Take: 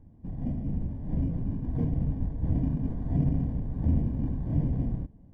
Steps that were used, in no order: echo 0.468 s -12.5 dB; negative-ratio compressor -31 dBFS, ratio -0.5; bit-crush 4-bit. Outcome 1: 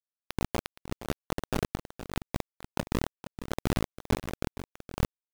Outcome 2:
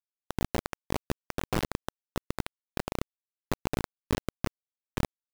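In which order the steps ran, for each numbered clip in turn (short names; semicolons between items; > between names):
negative-ratio compressor > bit-crush > echo; echo > negative-ratio compressor > bit-crush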